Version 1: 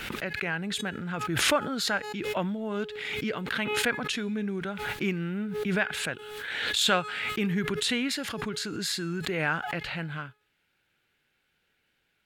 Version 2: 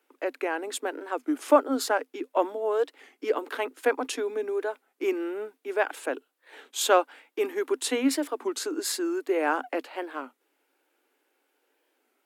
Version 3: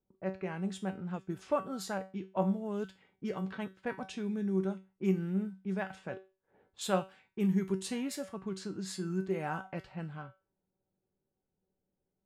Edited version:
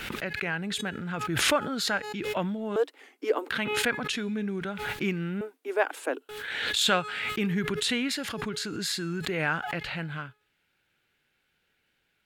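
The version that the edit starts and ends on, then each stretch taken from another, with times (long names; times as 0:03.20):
1
0:02.76–0:03.50: punch in from 2
0:05.41–0:06.29: punch in from 2
not used: 3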